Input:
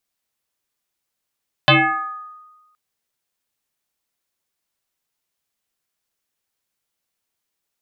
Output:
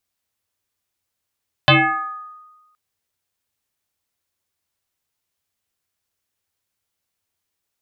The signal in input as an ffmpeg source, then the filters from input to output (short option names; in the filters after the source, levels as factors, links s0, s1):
-f lavfi -i "aevalsrc='0.447*pow(10,-3*t/1.25)*sin(2*PI*1240*t+5.6*pow(10,-3*t/0.99)*sin(2*PI*0.37*1240*t))':d=1.07:s=44100"
-af "equalizer=f=89:w=3.4:g=13"